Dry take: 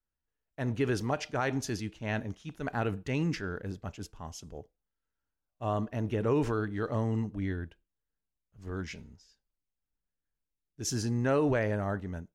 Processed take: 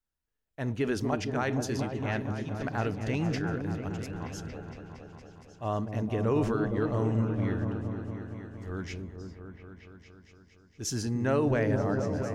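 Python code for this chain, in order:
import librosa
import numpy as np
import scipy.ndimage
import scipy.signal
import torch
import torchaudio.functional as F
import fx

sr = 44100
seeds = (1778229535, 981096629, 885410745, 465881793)

y = fx.echo_opening(x, sr, ms=231, hz=400, octaves=1, feedback_pct=70, wet_db=-3)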